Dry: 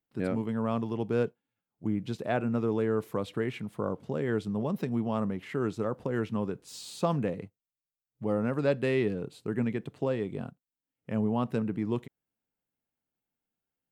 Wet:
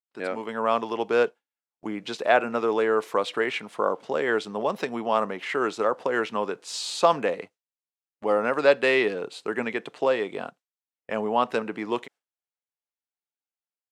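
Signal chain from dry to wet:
band-pass filter 610–7,600 Hz
noise gate with hold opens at −54 dBFS
automatic gain control gain up to 5.5 dB
level +7.5 dB

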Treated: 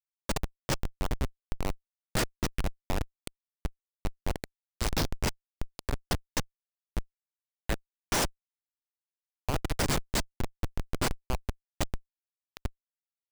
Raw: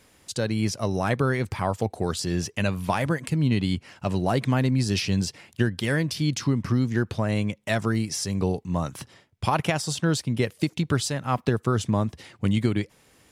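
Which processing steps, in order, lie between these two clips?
RIAA equalisation recording
0:04.54–0:05.84: gain on a spectral selection 1,000–3,300 Hz −17 dB
0:10.38–0:11.11: bass and treble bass −8 dB, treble −4 dB
comparator with hysteresis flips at −17 dBFS
level +2 dB

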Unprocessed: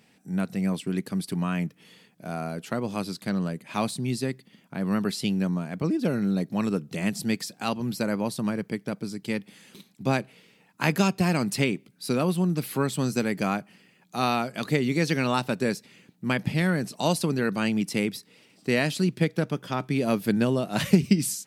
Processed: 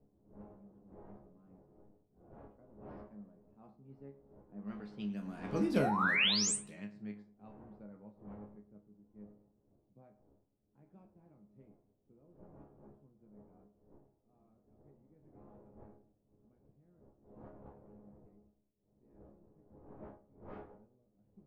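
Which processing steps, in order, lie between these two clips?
source passing by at 0:05.75, 17 m/s, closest 2.7 metres
wind on the microphone 600 Hz −54 dBFS
sound drawn into the spectrogram rise, 0:05.81–0:06.56, 610–9,300 Hz −28 dBFS
bucket-brigade delay 106 ms, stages 2,048, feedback 43%, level −14 dB
low-pass that shuts in the quiet parts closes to 340 Hz, open at −33 dBFS
resonators tuned to a chord C#2 fifth, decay 0.24 s
dynamic equaliser 2,000 Hz, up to +3 dB, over −49 dBFS, Q 0.72
amplitude modulation by smooth noise, depth 55%
level +6.5 dB

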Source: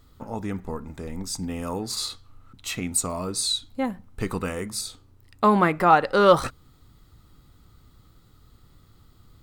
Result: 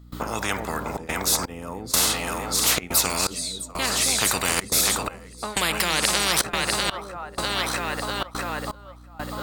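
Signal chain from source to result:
high-pass filter 100 Hz 24 dB per octave
mains hum 60 Hz, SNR 17 dB
echo with a time of its own for lows and highs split 560 Hz, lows 269 ms, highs 648 ms, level −8.5 dB
gate pattern ".xxxxxxx.xxx..." 124 BPM −24 dB
every bin compressed towards the loudest bin 10 to 1

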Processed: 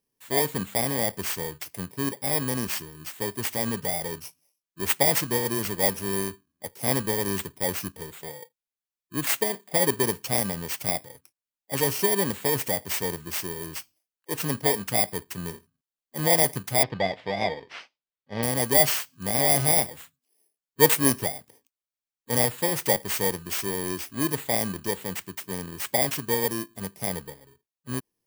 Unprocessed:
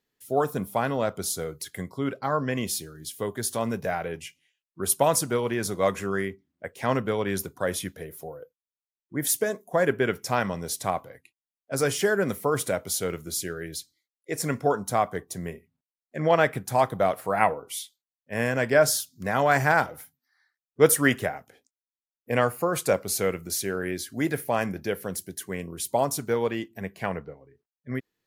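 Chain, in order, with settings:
samples in bit-reversed order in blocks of 32 samples
0:16.83–0:18.43: low-pass filter 4,100 Hz 24 dB per octave

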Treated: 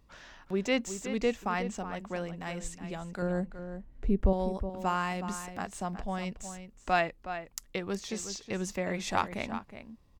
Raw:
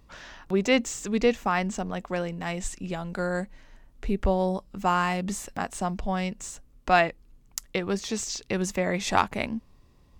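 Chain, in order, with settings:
0:03.22–0:04.33: tilt shelving filter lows +7.5 dB, about 830 Hz
slap from a distant wall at 63 metres, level −10 dB
level −6.5 dB

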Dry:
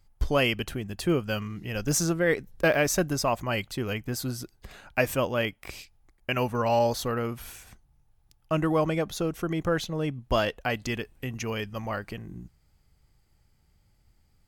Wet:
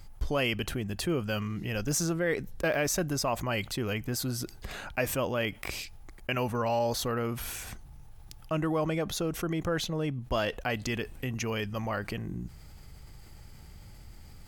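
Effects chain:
envelope flattener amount 50%
level −6.5 dB

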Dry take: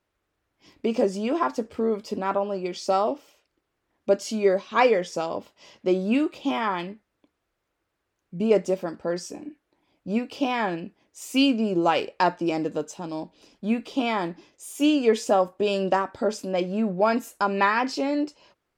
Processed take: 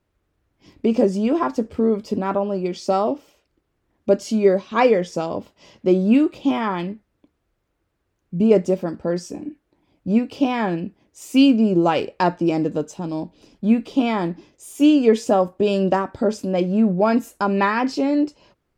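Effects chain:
low-shelf EQ 340 Hz +12 dB

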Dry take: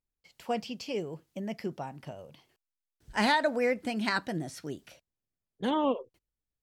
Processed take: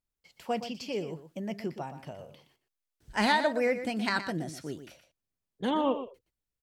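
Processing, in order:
single-tap delay 120 ms −11 dB

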